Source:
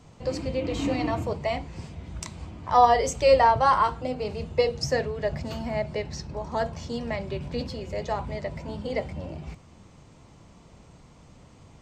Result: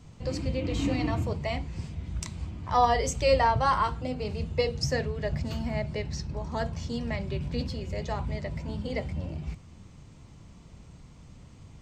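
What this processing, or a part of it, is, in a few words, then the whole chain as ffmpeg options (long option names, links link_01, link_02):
smiley-face EQ: -af "lowshelf=frequency=180:gain=5,equalizer=frequency=660:width_type=o:width=2.2:gain=-6,highshelf=frequency=6600:gain=-7,highshelf=frequency=7700:gain=6.5"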